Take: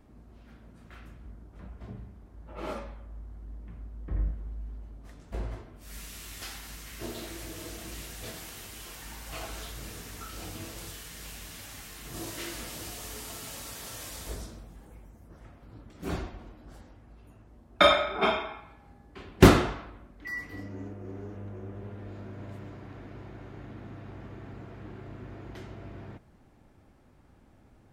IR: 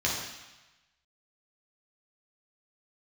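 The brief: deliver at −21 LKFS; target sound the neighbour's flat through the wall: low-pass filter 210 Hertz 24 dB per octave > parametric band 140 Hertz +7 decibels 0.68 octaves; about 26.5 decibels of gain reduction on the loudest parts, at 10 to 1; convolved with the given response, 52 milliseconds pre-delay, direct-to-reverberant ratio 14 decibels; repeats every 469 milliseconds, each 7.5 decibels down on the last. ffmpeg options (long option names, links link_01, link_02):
-filter_complex "[0:a]acompressor=threshold=-37dB:ratio=10,aecho=1:1:469|938|1407|1876|2345:0.422|0.177|0.0744|0.0312|0.0131,asplit=2[link_01][link_02];[1:a]atrim=start_sample=2205,adelay=52[link_03];[link_02][link_03]afir=irnorm=-1:irlink=0,volume=-24dB[link_04];[link_01][link_04]amix=inputs=2:normalize=0,lowpass=frequency=210:width=0.5412,lowpass=frequency=210:width=1.3066,equalizer=frequency=140:width_type=o:width=0.68:gain=7,volume=24.5dB"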